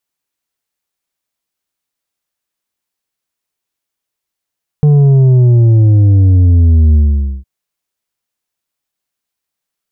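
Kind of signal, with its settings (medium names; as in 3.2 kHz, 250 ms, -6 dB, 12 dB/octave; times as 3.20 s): sub drop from 150 Hz, over 2.61 s, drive 6 dB, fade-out 0.49 s, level -5 dB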